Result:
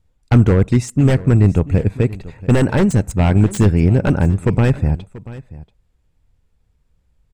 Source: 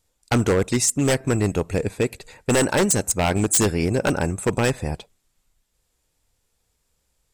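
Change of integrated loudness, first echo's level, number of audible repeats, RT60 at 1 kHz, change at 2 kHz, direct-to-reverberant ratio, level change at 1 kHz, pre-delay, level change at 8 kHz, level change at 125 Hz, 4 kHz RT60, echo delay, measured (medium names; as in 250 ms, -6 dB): +5.5 dB, -18.5 dB, 1, no reverb, -1.0 dB, no reverb, 0.0 dB, no reverb, -12.0 dB, +12.0 dB, no reverb, 685 ms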